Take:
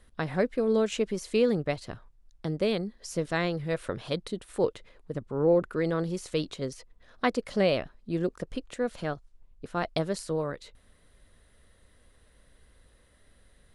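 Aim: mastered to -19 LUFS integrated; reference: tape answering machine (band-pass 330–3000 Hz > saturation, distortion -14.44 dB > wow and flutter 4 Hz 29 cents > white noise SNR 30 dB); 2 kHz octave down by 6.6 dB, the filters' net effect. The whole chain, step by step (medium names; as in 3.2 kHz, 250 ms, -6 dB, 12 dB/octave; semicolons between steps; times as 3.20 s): band-pass 330–3000 Hz; peaking EQ 2 kHz -7.5 dB; saturation -22.5 dBFS; wow and flutter 4 Hz 29 cents; white noise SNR 30 dB; trim +16 dB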